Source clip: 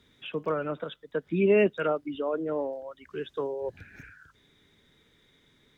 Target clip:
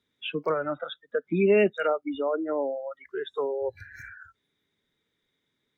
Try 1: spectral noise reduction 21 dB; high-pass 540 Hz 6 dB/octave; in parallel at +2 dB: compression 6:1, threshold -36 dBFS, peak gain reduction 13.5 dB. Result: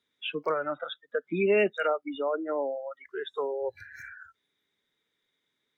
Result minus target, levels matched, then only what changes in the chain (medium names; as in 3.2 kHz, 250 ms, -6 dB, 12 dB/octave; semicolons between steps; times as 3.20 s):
125 Hz band -4.0 dB
change: high-pass 140 Hz 6 dB/octave